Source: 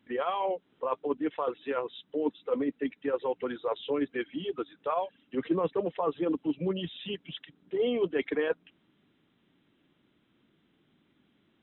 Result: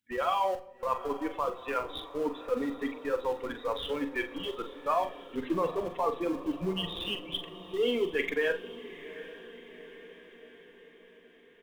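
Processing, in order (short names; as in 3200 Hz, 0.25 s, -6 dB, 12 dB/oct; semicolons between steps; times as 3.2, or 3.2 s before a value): per-bin expansion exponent 1.5; tilt shelf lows -5.5 dB, about 740 Hz; in parallel at -11 dB: Schmitt trigger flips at -37 dBFS; on the sum: doubler 43 ms -9 dB; diffused feedback echo 0.797 s, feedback 57%, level -15 dB; on a send at -13.5 dB: reverb RT60 0.85 s, pre-delay 4 ms; on the sum: gain +2 dB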